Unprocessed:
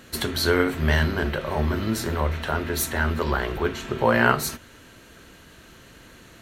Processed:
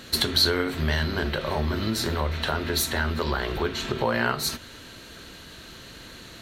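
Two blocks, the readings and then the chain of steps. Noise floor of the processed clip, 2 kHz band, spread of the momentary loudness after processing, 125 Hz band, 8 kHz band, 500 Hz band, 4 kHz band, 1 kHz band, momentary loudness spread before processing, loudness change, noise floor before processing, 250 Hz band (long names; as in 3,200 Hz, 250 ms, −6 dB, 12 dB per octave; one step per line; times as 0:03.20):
−45 dBFS, −3.5 dB, 21 LU, −3.0 dB, 0.0 dB, −3.5 dB, +6.0 dB, −3.5 dB, 8 LU, −1.5 dB, −49 dBFS, −3.0 dB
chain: downward compressor 2.5 to 1, threshold −28 dBFS, peak gain reduction 10.5 dB
parametric band 4,100 Hz +9 dB 0.65 octaves
level +3 dB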